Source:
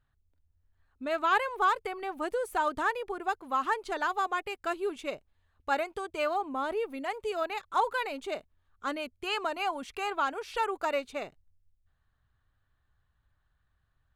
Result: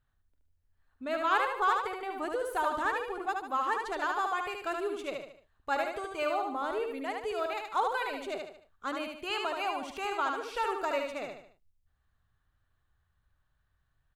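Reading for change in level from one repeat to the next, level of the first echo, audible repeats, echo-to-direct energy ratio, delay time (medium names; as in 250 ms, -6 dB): -7.5 dB, -4.0 dB, 4, -3.0 dB, 74 ms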